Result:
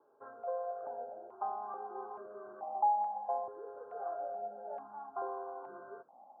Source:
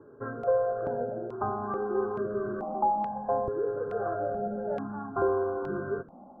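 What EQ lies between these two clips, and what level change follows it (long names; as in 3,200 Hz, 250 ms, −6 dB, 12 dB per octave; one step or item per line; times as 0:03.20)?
resonant band-pass 800 Hz, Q 3.6
high-frequency loss of the air 470 metres
spectral tilt +2.5 dB per octave
0.0 dB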